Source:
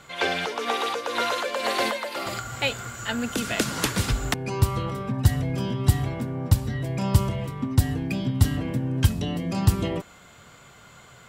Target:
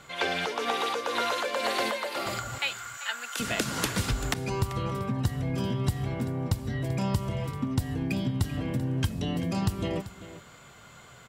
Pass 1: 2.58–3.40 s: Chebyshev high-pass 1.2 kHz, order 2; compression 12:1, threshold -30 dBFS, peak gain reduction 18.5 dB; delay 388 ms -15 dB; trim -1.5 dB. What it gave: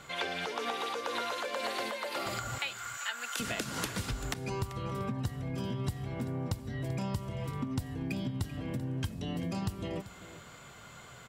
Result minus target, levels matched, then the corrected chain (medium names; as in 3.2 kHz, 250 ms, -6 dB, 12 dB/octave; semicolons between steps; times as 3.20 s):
compression: peak gain reduction +8 dB
2.58–3.40 s: Chebyshev high-pass 1.2 kHz, order 2; compression 12:1, threshold -21.5 dBFS, peak gain reduction 11 dB; delay 388 ms -15 dB; trim -1.5 dB